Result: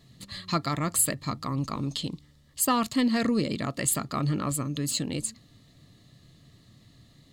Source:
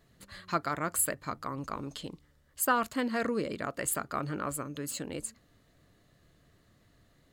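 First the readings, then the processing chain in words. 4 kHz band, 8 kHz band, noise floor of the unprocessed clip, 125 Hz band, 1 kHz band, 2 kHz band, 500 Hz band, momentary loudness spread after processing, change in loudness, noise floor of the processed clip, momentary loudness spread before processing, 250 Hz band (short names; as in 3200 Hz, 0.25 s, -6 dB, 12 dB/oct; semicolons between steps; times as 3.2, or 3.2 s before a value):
+10.5 dB, +6.0 dB, -66 dBFS, +11.5 dB, +1.5 dB, -0.5 dB, +1.0 dB, 11 LU, +5.0 dB, -58 dBFS, 13 LU, +8.5 dB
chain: ten-band EQ 125 Hz +10 dB, 250 Hz +6 dB, 4000 Hz +10 dB, 8000 Hz +4 dB; in parallel at -11 dB: soft clip -24.5 dBFS, distortion -11 dB; on the sum: Butterworth band-stop 1500 Hz, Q 5.9; bell 460 Hz -2.5 dB 0.97 oct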